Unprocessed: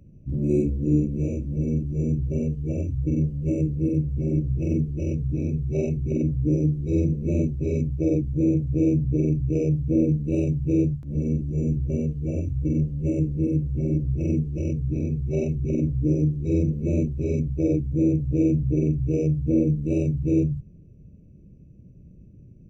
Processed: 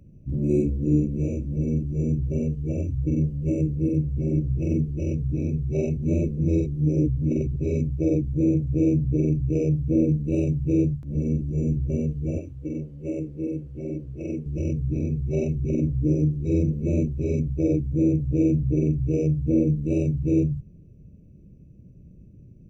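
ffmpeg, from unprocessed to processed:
ffmpeg -i in.wav -filter_complex "[0:a]asettb=1/sr,asplit=3[link_01][link_02][link_03];[link_01]atrim=end=12.384[link_04];[link_02]atrim=start=12.38:end=14.46,asetpts=PTS-STARTPTS,afade=type=in:duration=0.004:curve=qsin,afade=type=out:start_time=2.076:duration=0.004:curve=qsin,bass=frequency=250:gain=-13,treble=frequency=4000:gain=-5[link_05];[link_03]atrim=start=14.456[link_06];[link_04][link_05]acrossfade=duration=0.004:curve1=hsin:curve2=qsin[link_07];[link_07][link_06]acrossfade=duration=0.004:curve1=qsin:curve2=hsin,asplit=3[link_08][link_09][link_10];[link_08]atrim=end=5.972[link_11];[link_09]atrim=start=5.968:end=7.562,asetpts=PTS-STARTPTS,areverse[link_12];[link_10]atrim=start=7.558[link_13];[link_11][link_12]acrossfade=duration=0.004:curve1=hsin:curve2=hsin[link_14];[link_14][link_13]acrossfade=duration=0.004:curve1=hsin:curve2=hsin" out.wav

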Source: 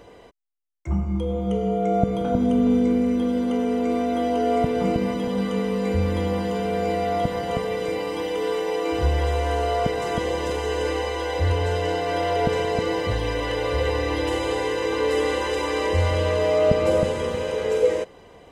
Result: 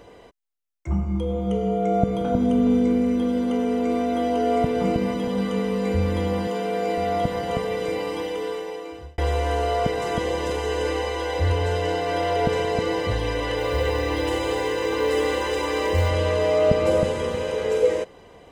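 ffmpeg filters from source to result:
ffmpeg -i in.wav -filter_complex "[0:a]asettb=1/sr,asplit=3[link_01][link_02][link_03];[link_01]atrim=end=6.474[link_04];[link_02]atrim=start=6.47:end=6.98,asetpts=PTS-STARTPTS,afade=type=in:duration=0.004:curve=qsin,afade=type=out:start_time=0.506:duration=0.004:curve=qsin,highpass=220[link_05];[link_03]atrim=start=6.976[link_06];[link_04][link_05]acrossfade=duration=0.004:curve1=hsin:curve2=qsin[link_07];[link_07][link_06]acrossfade=duration=0.004:curve1=qsin:curve2=hsin,asettb=1/sr,asplit=3[link_08][link_09][link_10];[link_08]atrim=end=13.584[link_11];[link_09]atrim=start=13.58:end=16.09,asetpts=PTS-STARTPTS,afade=type=in:duration=0.004:curve=qsin,afade=type=out:start_time=2.506:duration=0.004:curve=qsin,acrusher=bits=8:mode=log:mix=0:aa=0.000001[link_12];[link_10]atrim=start=16.086[link_13];[link_11][link_12]acrossfade=duration=0.004:curve1=hsin:curve2=qsin[link_14];[link_14][link_13]acrossfade=duration=0.004:curve1=qsin:curve2=hsin,asplit=2[link_15][link_16];[link_15]atrim=end=9.18,asetpts=PTS-STARTPTS,afade=type=out:start_time=8.09:duration=1.09[link_17];[link_16]atrim=start=9.18,asetpts=PTS-STARTPTS,afade=type=in:duration=0.004:curve=hsin[link_18];[link_17][link_18]concat=n=2:v=0:a=1" out.wav

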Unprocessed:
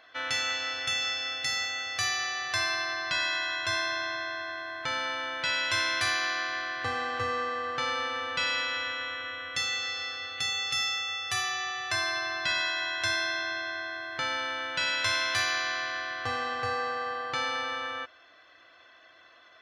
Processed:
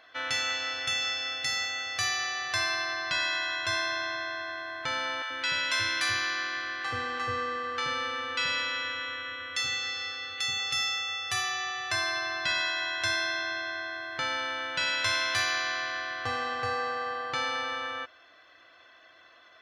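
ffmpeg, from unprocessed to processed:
ffmpeg -i in.wav -filter_complex "[0:a]asettb=1/sr,asplit=3[link_01][link_02][link_03];[link_01]atrim=end=5.224[link_04];[link_02]atrim=start=5.22:end=10.6,asetpts=PTS-STARTPTS,afade=type=in:duration=0.004:curve=qsin,afade=type=out:start_time=5.376:duration=0.004:curve=qsin,acrossover=split=740[link_05][link_06];[link_05]adelay=80[link_07];[link_07][link_06]amix=inputs=2:normalize=0,atrim=end_sample=237258[link_08];[link_03]atrim=start=10.596[link_09];[link_04][link_08]acrossfade=duration=0.004:curve1=hsin:curve2=qsin[link_10];[link_10][link_09]acrossfade=duration=0.004:curve1=qsin:curve2=hsin" out.wav

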